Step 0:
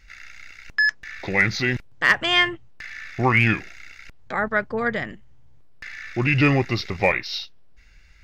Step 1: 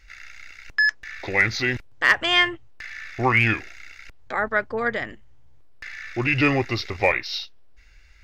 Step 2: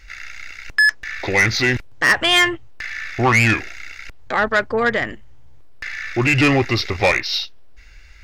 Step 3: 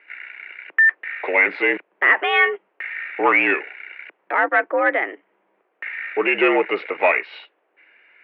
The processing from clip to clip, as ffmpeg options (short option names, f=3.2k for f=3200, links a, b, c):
-af "equalizer=f=170:w=2.8:g=-14"
-af "asoftclip=type=tanh:threshold=-17dB,volume=8dB"
-af "highpass=f=240:t=q:w=0.5412,highpass=f=240:t=q:w=1.307,lowpass=f=2.5k:t=q:w=0.5176,lowpass=f=2.5k:t=q:w=0.7071,lowpass=f=2.5k:t=q:w=1.932,afreqshift=74"